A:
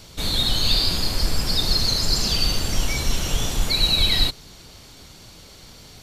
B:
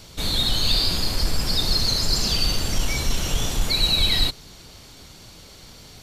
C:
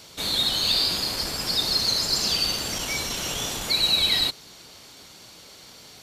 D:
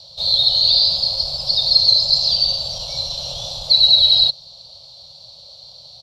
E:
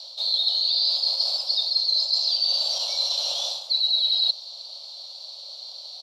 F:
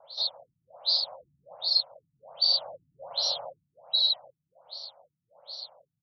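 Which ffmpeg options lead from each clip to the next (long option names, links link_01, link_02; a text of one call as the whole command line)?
ffmpeg -i in.wav -af "asoftclip=type=tanh:threshold=-8.5dB" out.wav
ffmpeg -i in.wav -af "highpass=frequency=340:poles=1" out.wav
ffmpeg -i in.wav -af "firequalizer=gain_entry='entry(150,0);entry(220,-24);entry(380,-29);entry(540,3);entry(1800,-29);entry(4100,10);entry(6600,-14);entry(14000,-23)':delay=0.05:min_phase=1,volume=2.5dB" out.wav
ffmpeg -i in.wav -af "areverse,acompressor=threshold=-23dB:ratio=6,areverse,highpass=720,volume=2.5dB" out.wav
ffmpeg -i in.wav -af "equalizer=frequency=2600:width_type=o:width=0.58:gain=-15,afftfilt=real='re*lt(b*sr/1024,280*pow(6000/280,0.5+0.5*sin(2*PI*1.3*pts/sr)))':imag='im*lt(b*sr/1024,280*pow(6000/280,0.5+0.5*sin(2*PI*1.3*pts/sr)))':win_size=1024:overlap=0.75,volume=2dB" out.wav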